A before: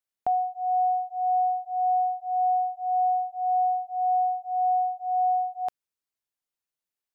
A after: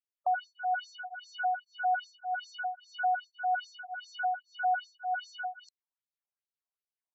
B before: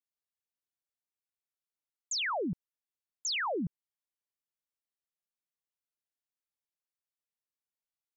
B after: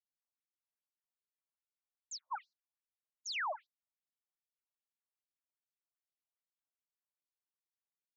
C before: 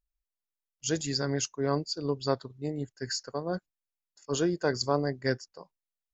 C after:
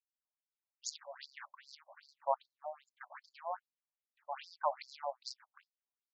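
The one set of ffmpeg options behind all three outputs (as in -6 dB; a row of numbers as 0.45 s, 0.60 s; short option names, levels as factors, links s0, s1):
-af "aeval=exprs='max(val(0),0)':c=same,adynamicsmooth=sensitivity=6.5:basefreq=3800,afftfilt=real='re*between(b*sr/1024,740*pow(5800/740,0.5+0.5*sin(2*PI*2.5*pts/sr))/1.41,740*pow(5800/740,0.5+0.5*sin(2*PI*2.5*pts/sr))*1.41)':imag='im*between(b*sr/1024,740*pow(5800/740,0.5+0.5*sin(2*PI*2.5*pts/sr))/1.41,740*pow(5800/740,0.5+0.5*sin(2*PI*2.5*pts/sr))*1.41)':win_size=1024:overlap=0.75,volume=1.41"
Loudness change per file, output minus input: -8.0 LU, -8.0 LU, -11.5 LU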